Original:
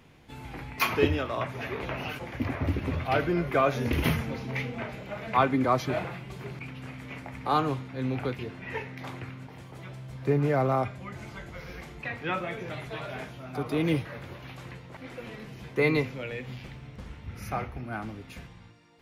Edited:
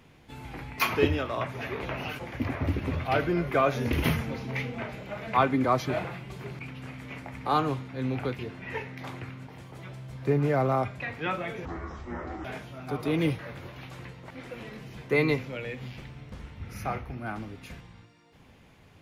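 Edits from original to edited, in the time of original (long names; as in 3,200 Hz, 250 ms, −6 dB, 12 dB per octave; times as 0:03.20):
0:11.00–0:12.03: remove
0:12.68–0:13.11: play speed 54%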